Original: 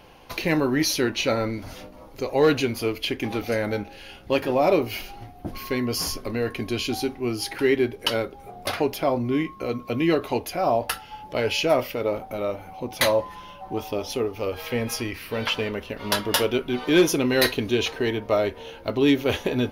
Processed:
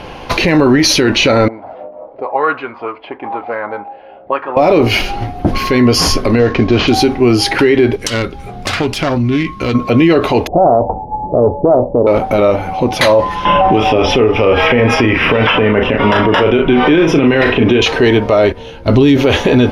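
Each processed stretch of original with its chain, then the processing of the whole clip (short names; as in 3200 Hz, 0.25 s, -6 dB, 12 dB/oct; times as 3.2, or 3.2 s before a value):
1.48–4.57 air absorption 280 m + auto-wah 580–1200 Hz, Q 4.1, up, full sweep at -20.5 dBFS
6.39–6.88 CVSD 32 kbps + high shelf 2800 Hz -9 dB + mismatched tape noise reduction decoder only
7.96–9.75 self-modulated delay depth 0.14 ms + bell 600 Hz -12 dB 2.2 oct + compressor 4:1, threshold -31 dBFS
10.47–12.07 steep low-pass 890 Hz 72 dB/oct + Doppler distortion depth 0.2 ms
13.45–17.82 polynomial smoothing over 25 samples + doubler 37 ms -7 dB + three-band squash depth 100%
18.52–19.17 tone controls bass +9 dB, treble +5 dB + gate -32 dBFS, range -13 dB
whole clip: LPF 10000 Hz 12 dB/oct; high shelf 5900 Hz -10 dB; maximiser +22 dB; gain -1 dB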